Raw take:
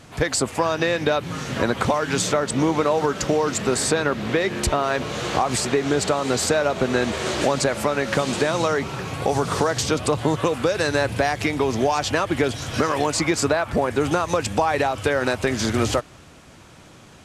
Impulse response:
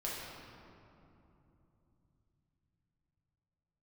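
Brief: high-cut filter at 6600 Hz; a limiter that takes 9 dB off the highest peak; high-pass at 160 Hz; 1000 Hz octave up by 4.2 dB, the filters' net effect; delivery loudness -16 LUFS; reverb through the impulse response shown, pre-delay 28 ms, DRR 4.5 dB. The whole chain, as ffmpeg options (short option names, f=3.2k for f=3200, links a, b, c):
-filter_complex "[0:a]highpass=160,lowpass=6.6k,equalizer=f=1k:t=o:g=5.5,alimiter=limit=-13dB:level=0:latency=1,asplit=2[a][b];[1:a]atrim=start_sample=2205,adelay=28[c];[b][c]afir=irnorm=-1:irlink=0,volume=-7.5dB[d];[a][d]amix=inputs=2:normalize=0,volume=6.5dB"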